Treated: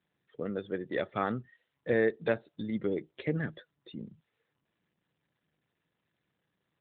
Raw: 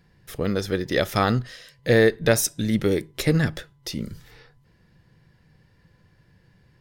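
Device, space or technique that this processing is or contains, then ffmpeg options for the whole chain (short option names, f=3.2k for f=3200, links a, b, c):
mobile call with aggressive noise cancelling: -filter_complex "[0:a]asplit=3[a][b][c];[a]afade=t=out:st=0.86:d=0.02[d];[b]highshelf=f=5.8k:g=-6,afade=t=in:st=0.86:d=0.02,afade=t=out:st=2.49:d=0.02[e];[c]afade=t=in:st=2.49:d=0.02[f];[d][e][f]amix=inputs=3:normalize=0,highpass=170,afftdn=nr=19:nf=-34,volume=-9dB" -ar 8000 -c:a libopencore_amrnb -b:a 12200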